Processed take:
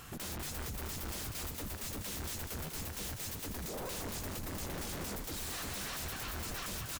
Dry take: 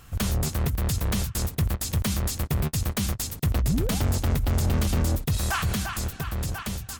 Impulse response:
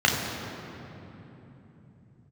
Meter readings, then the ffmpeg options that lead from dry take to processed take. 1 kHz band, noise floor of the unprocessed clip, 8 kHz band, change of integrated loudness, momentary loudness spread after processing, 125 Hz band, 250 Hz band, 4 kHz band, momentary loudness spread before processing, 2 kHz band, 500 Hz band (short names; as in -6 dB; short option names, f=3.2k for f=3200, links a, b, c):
-10.5 dB, -43 dBFS, -8.5 dB, -13.0 dB, 2 LU, -19.5 dB, -15.5 dB, -8.5 dB, 6 LU, -9.5 dB, -10.5 dB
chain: -filter_complex "[0:a]lowshelf=f=110:g=-11.5,acompressor=threshold=-33dB:ratio=6,aeval=exprs='0.0112*(abs(mod(val(0)/0.0112+3,4)-2)-1)':c=same,asplit=2[a][b];[b]asplit=6[c][d][e][f][g][h];[c]adelay=196,afreqshift=-49,volume=-6.5dB[i];[d]adelay=392,afreqshift=-98,volume=-12.3dB[j];[e]adelay=588,afreqshift=-147,volume=-18.2dB[k];[f]adelay=784,afreqshift=-196,volume=-24dB[l];[g]adelay=980,afreqshift=-245,volume=-29.9dB[m];[h]adelay=1176,afreqshift=-294,volume=-35.7dB[n];[i][j][k][l][m][n]amix=inputs=6:normalize=0[o];[a][o]amix=inputs=2:normalize=0,volume=2.5dB"